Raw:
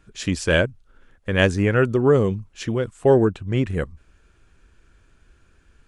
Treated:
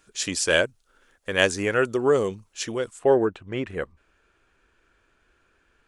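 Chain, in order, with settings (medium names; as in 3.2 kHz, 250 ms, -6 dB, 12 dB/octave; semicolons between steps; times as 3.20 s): tone controls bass -14 dB, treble +9 dB, from 2.98 s treble -7 dB; trim -1 dB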